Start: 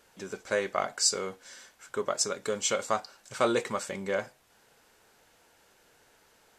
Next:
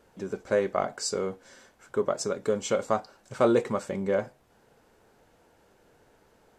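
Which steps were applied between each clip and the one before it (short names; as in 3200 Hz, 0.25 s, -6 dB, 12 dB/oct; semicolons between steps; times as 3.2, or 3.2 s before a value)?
tilt shelf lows +7.5 dB, about 1100 Hz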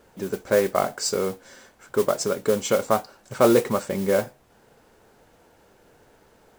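modulation noise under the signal 17 dB; gain +5 dB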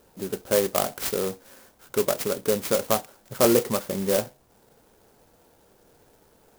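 clock jitter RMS 0.11 ms; gain -2 dB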